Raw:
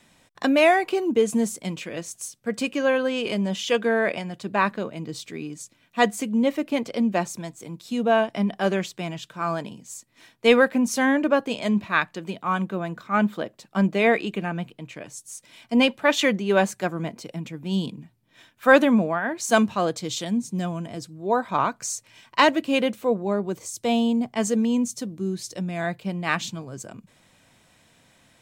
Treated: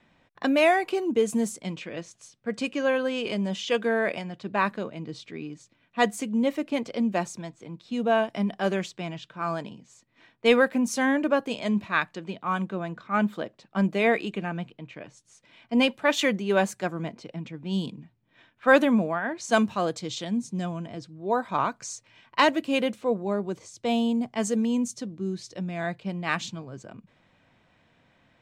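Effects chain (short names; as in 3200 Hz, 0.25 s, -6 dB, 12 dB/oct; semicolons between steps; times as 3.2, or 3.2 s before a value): low-pass opened by the level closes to 2700 Hz, open at -18.5 dBFS; gain -3 dB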